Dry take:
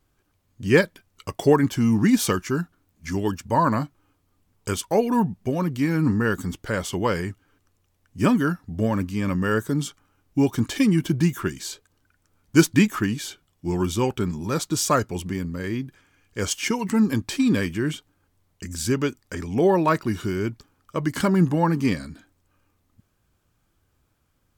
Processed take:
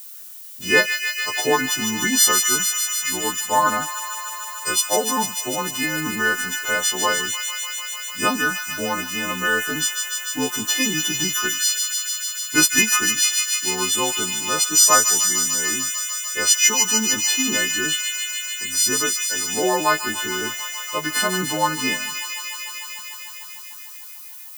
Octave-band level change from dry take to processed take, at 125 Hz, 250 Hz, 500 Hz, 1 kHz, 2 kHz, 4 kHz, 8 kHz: -13.0 dB, -7.0 dB, -2.5 dB, +4.0 dB, +9.5 dB, +14.5 dB, +17.5 dB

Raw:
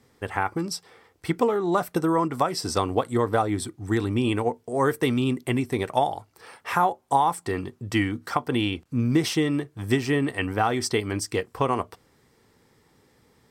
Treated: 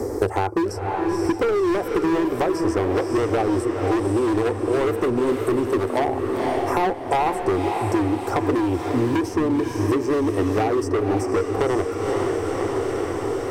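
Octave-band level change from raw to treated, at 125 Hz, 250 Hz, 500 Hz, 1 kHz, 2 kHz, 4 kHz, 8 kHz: +1.0 dB, +4.5 dB, +6.5 dB, +1.5 dB, +0.5 dB, -4.0 dB, -2.5 dB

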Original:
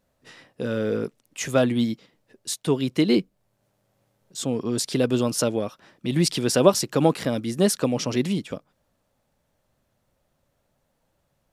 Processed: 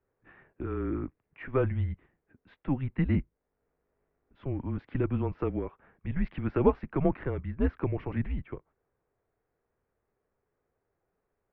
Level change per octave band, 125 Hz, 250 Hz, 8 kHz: -2.5 dB, -8.5 dB, under -40 dB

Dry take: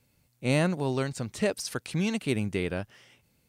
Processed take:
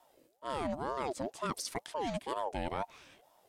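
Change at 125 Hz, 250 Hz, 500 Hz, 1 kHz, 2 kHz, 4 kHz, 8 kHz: -16.5 dB, -12.0 dB, -7.0 dB, +3.5 dB, -11.0 dB, -7.0 dB, -6.5 dB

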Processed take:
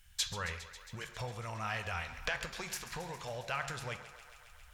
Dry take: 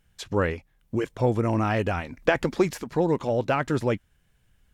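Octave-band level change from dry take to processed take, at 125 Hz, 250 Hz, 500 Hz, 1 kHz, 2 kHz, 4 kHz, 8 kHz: -15.5 dB, -24.5 dB, -20.5 dB, -11.5 dB, -7.0 dB, 0.0 dB, +2.5 dB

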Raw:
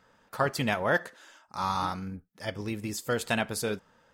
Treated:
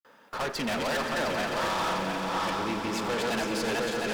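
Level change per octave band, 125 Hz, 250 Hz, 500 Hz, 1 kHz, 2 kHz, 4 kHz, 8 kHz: -3.5 dB, +2.5 dB, +2.0 dB, +2.5 dB, +1.5 dB, +5.5 dB, +1.0 dB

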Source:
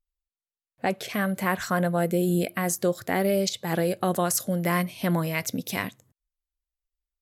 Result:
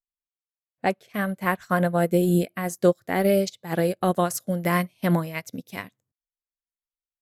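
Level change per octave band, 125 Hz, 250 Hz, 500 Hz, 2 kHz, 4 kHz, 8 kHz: +2.0 dB, +2.0 dB, +3.0 dB, 0.0 dB, -4.0 dB, -5.5 dB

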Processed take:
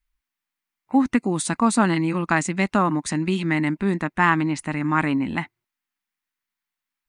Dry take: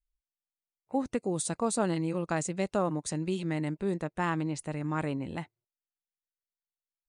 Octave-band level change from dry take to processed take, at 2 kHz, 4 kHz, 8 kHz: +15.5 dB, +10.0 dB, +5.5 dB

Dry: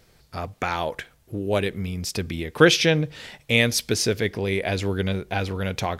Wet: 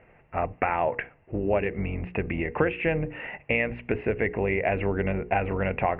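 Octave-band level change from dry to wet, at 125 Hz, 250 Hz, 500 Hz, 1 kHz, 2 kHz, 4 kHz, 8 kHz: -4.5 dB, -4.0 dB, -2.0 dB, +1.5 dB, -4.0 dB, -21.0 dB, under -40 dB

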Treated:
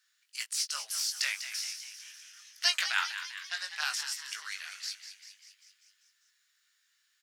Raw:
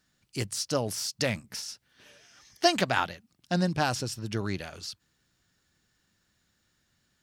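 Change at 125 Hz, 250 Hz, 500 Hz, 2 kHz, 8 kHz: under -40 dB, under -40 dB, -27.0 dB, +0.5 dB, +1.5 dB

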